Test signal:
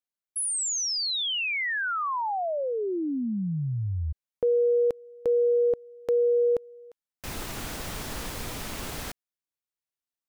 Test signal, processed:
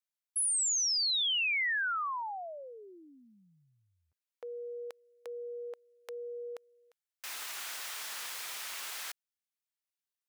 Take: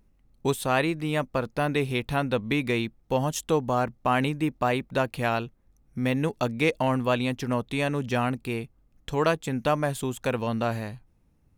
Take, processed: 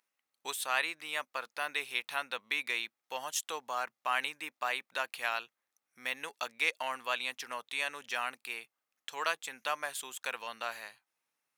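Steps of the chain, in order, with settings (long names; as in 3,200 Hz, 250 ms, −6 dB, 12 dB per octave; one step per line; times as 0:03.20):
high-pass filter 1,300 Hz 12 dB per octave
level −1.5 dB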